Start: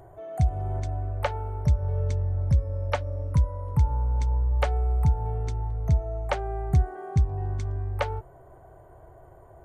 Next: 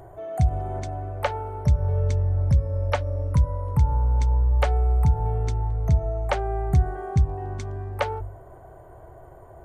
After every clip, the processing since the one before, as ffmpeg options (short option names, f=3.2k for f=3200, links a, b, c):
-filter_complex "[0:a]bandreject=f=49.17:t=h:w=4,bandreject=f=98.34:t=h:w=4,bandreject=f=147.51:t=h:w=4,asplit=2[a][b];[b]alimiter=limit=-20.5dB:level=0:latency=1,volume=-3dB[c];[a][c]amix=inputs=2:normalize=0"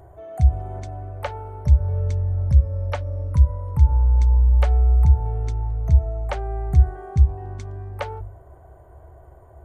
-af "equalizer=f=69:t=o:w=0.56:g=12.5,volume=-4dB"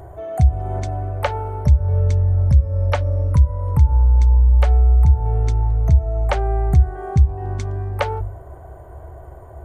-af "acompressor=threshold=-23dB:ratio=2,volume=8.5dB"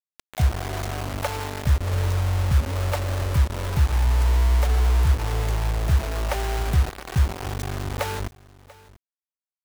-af "acrusher=bits=3:mix=0:aa=0.000001,aecho=1:1:689:0.0891,volume=-6.5dB"